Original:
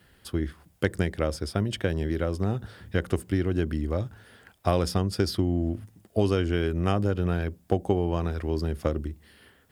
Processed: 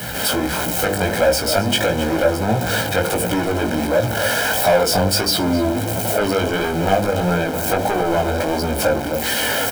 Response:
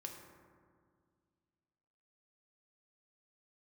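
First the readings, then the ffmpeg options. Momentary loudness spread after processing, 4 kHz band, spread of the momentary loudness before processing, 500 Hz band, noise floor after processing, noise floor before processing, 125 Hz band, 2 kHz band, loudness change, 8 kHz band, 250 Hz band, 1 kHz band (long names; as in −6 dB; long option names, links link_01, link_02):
4 LU, +17.0 dB, 7 LU, +11.0 dB, −23 dBFS, −61 dBFS, +3.0 dB, +16.0 dB, +9.5 dB, +21.0 dB, +7.0 dB, +15.0 dB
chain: -filter_complex "[0:a]aeval=exprs='val(0)+0.5*0.0422*sgn(val(0))':channel_layout=same,bandreject=frequency=50:width_type=h:width=6,bandreject=frequency=100:width_type=h:width=6,bandreject=frequency=150:width_type=h:width=6,bandreject=frequency=200:width_type=h:width=6,bandreject=frequency=250:width_type=h:width=6,bandreject=frequency=300:width_type=h:width=6,bandreject=frequency=350:width_type=h:width=6,bandreject=frequency=400:width_type=h:width=6,bandreject=frequency=450:width_type=h:width=6,bandreject=frequency=500:width_type=h:width=6,asplit=2[link_01][link_02];[link_02]adelay=262.4,volume=-13dB,highshelf=frequency=4000:gain=-5.9[link_03];[link_01][link_03]amix=inputs=2:normalize=0,flanger=delay=3.1:depth=7.1:regen=-87:speed=0.45:shape=triangular,highpass=68,highshelf=frequency=11000:gain=5.5,acrossover=split=230[link_04][link_05];[link_05]dynaudnorm=framelen=120:gausssize=3:maxgain=9.5dB[link_06];[link_04][link_06]amix=inputs=2:normalize=0,equalizer=frequency=420:width=1.1:gain=11,asplit=2[link_07][link_08];[link_08]acompressor=threshold=-21dB:ratio=6,volume=-2.5dB[link_09];[link_07][link_09]amix=inputs=2:normalize=0,asoftclip=type=tanh:threshold=-11dB,aecho=1:1:1.3:0.79,flanger=delay=16.5:depth=4.4:speed=1.5,volume=4dB"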